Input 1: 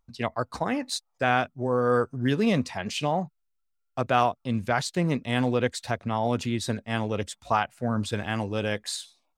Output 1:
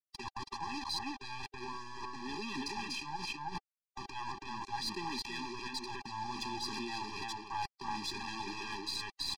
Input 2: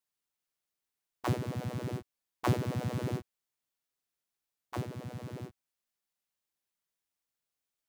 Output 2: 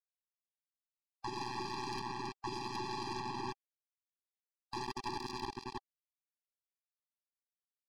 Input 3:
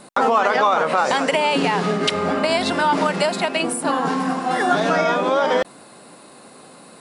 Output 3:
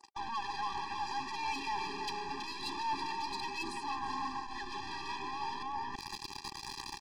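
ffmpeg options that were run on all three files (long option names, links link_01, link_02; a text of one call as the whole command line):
ffmpeg -i in.wav -filter_complex "[0:a]acrusher=bits=5:mix=0:aa=0.000001,adynamicequalizer=threshold=0.0178:dfrequency=2200:dqfactor=1.6:tfrequency=2200:tqfactor=1.6:attack=5:release=100:ratio=0.375:range=2.5:mode=boostabove:tftype=bell,bandreject=frequency=3300:width=17,asplit=2[link_01][link_02];[link_02]adelay=326.5,volume=-7dB,highshelf=frequency=4000:gain=-7.35[link_03];[link_01][link_03]amix=inputs=2:normalize=0,asoftclip=type=hard:threshold=-19dB,dynaudnorm=framelen=110:gausssize=3:maxgain=9dB,alimiter=limit=-21.5dB:level=0:latency=1:release=29,highpass=470,equalizer=frequency=470:width_type=q:width=4:gain=4,equalizer=frequency=790:width_type=q:width=4:gain=8,equalizer=frequency=1600:width_type=q:width=4:gain=-9,equalizer=frequency=4700:width_type=q:width=4:gain=9,lowpass=frequency=6300:width=0.5412,lowpass=frequency=6300:width=1.3066,areverse,acompressor=threshold=-36dB:ratio=12,areverse,asoftclip=type=tanh:threshold=-31dB,aeval=exprs='0.0282*(cos(1*acos(clip(val(0)/0.0282,-1,1)))-cos(1*PI/2))+0.00708*(cos(2*acos(clip(val(0)/0.0282,-1,1)))-cos(2*PI/2))':channel_layout=same,afftfilt=real='re*eq(mod(floor(b*sr/1024/390),2),0)':imag='im*eq(mod(floor(b*sr/1024/390),2),0)':win_size=1024:overlap=0.75,volume=5.5dB" out.wav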